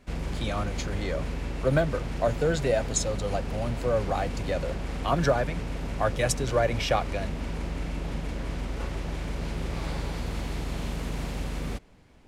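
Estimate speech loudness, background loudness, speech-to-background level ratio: -29.0 LUFS, -34.0 LUFS, 5.0 dB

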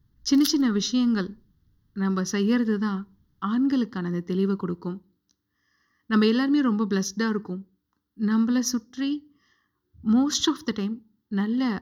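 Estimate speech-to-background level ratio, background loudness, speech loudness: 8.5 dB, -33.5 LUFS, -25.0 LUFS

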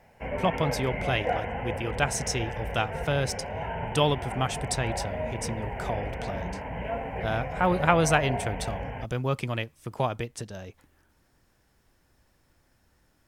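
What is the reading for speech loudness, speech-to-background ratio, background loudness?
-29.5 LUFS, 4.5 dB, -34.0 LUFS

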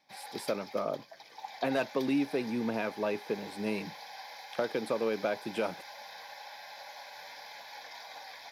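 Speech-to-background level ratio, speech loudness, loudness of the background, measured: 12.0 dB, -34.0 LUFS, -46.0 LUFS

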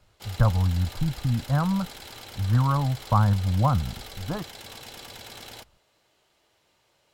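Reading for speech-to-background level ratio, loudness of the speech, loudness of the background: 16.0 dB, -25.0 LUFS, -41.0 LUFS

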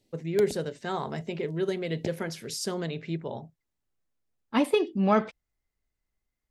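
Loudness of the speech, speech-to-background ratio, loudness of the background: -29.5 LUFS, 14.0 dB, -43.5 LUFS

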